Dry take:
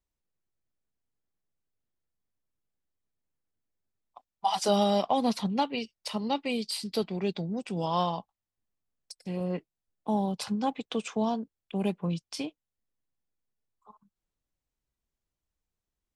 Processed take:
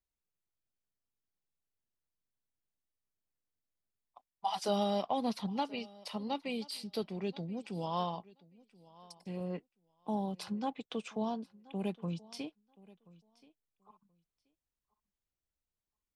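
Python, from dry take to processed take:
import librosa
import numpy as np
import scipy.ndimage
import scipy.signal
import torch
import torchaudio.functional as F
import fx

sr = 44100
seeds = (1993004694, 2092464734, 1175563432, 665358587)

y = fx.dynamic_eq(x, sr, hz=7400.0, q=1.9, threshold_db=-56.0, ratio=4.0, max_db=-6)
y = fx.echo_feedback(y, sr, ms=1029, feedback_pct=16, wet_db=-22.5)
y = F.gain(torch.from_numpy(y), -7.0).numpy()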